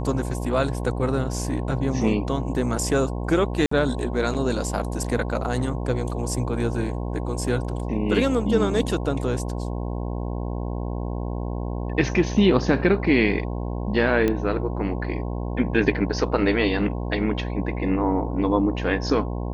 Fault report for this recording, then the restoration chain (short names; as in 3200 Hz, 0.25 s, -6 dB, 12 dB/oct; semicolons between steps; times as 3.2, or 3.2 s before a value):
buzz 60 Hz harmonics 18 -28 dBFS
3.66–3.71 gap 54 ms
14.28 pop -11 dBFS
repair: de-click; de-hum 60 Hz, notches 18; interpolate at 3.66, 54 ms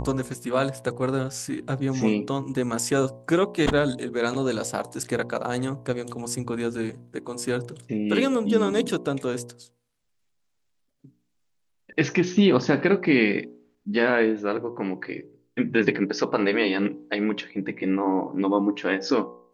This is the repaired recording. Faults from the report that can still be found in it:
none